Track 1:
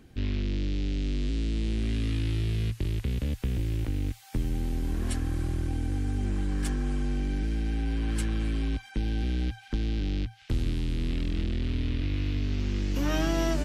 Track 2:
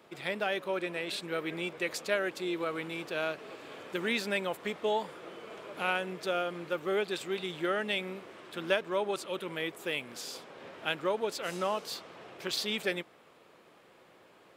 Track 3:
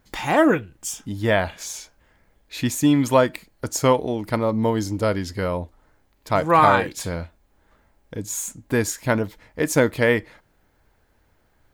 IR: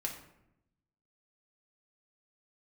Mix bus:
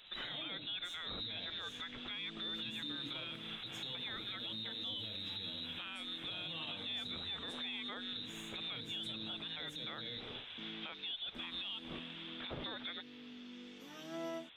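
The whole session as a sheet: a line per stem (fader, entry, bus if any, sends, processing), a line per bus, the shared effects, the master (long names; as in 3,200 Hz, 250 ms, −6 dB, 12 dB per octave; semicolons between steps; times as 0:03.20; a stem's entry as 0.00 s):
−14.5 dB, 0.85 s, no bus, no send, high-pass filter 180 Hz 24 dB per octave; automatic gain control gain up to 10 dB; resonators tuned to a chord E3 sus4, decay 0.23 s
0.0 dB, 0.00 s, bus A, no send, no processing
−15.0 dB, 0.00 s, bus A, send −15 dB, low-shelf EQ 360 Hz +11 dB; downward compressor 3 to 1, threshold −20 dBFS, peak gain reduction 10.5 dB
bus A: 0.0 dB, voice inversion scrambler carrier 3,900 Hz; downward compressor, threshold −37 dBFS, peak gain reduction 14 dB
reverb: on, RT60 0.80 s, pre-delay 4 ms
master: brickwall limiter −33.5 dBFS, peak gain reduction 11 dB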